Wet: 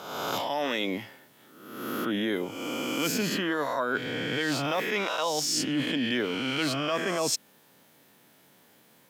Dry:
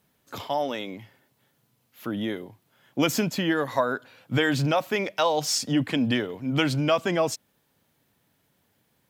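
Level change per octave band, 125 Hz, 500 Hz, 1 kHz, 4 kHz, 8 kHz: −8.5, −3.5, −2.5, +0.5, +1.0 decibels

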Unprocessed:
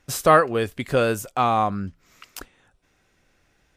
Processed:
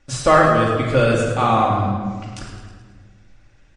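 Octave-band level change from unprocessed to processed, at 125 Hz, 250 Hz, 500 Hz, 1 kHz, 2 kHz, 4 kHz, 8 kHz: +9.5, +6.5, +4.0, +4.0, +4.5, +4.0, +1.0 decibels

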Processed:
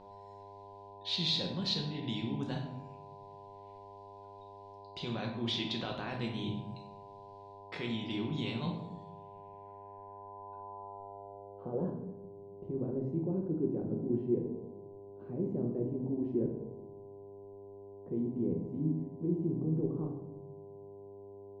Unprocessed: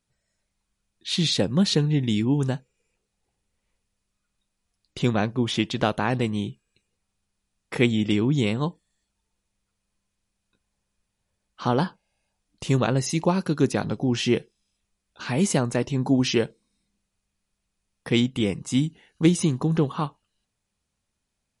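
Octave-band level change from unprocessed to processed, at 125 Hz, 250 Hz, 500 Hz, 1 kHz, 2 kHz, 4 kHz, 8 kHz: −12.5 dB, −11.0 dB, −10.0 dB, −13.0 dB, −15.5 dB, −8.0 dB, below −20 dB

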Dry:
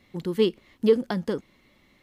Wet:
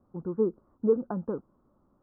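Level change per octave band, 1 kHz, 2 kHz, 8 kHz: −4.5 dB, below −15 dB, can't be measured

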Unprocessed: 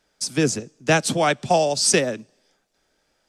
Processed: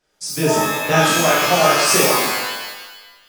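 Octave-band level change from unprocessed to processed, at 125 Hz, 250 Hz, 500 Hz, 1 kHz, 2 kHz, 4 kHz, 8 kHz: +3.0, +2.5, +4.0, +7.5, +7.5, +7.0, +4.5 decibels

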